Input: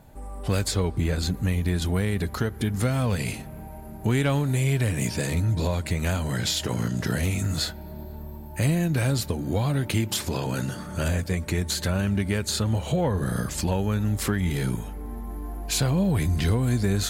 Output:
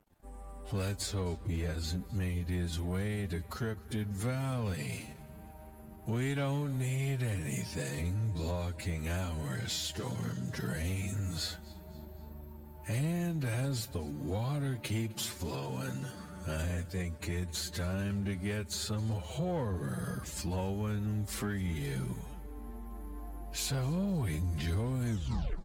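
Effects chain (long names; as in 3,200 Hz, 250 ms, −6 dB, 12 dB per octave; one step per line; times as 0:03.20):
turntable brake at the end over 0.39 s
on a send: repeating echo 173 ms, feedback 44%, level −22 dB
on the sum: dead-zone distortion −49 dBFS
phase-vocoder stretch with locked phases 1.5×
soft clipping −17.5 dBFS, distortion −19 dB
level −8 dB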